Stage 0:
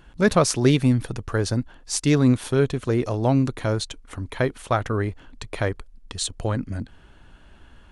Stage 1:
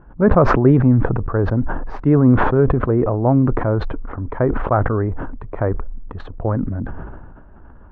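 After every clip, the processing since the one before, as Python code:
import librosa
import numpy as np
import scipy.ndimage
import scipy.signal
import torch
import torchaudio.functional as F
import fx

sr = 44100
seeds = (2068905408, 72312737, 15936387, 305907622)

y = scipy.signal.sosfilt(scipy.signal.butter(4, 1300.0, 'lowpass', fs=sr, output='sos'), x)
y = fx.sustainer(y, sr, db_per_s=31.0)
y = y * 10.0 ** (4.5 / 20.0)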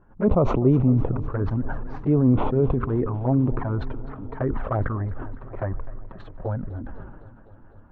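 y = fx.env_flanger(x, sr, rest_ms=10.5, full_db=-10.5)
y = fx.echo_warbled(y, sr, ms=253, feedback_pct=75, rate_hz=2.8, cents=69, wet_db=-18.5)
y = y * 10.0 ** (-5.5 / 20.0)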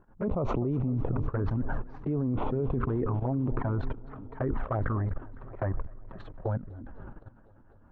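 y = fx.level_steps(x, sr, step_db=14)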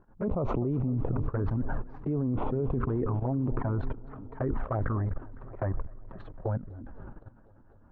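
y = fx.high_shelf(x, sr, hz=2900.0, db=-9.0)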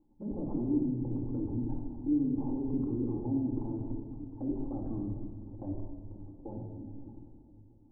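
y = fx.formant_cascade(x, sr, vowel='u')
y = fx.room_shoebox(y, sr, seeds[0], volume_m3=1800.0, walls='mixed', distance_m=2.2)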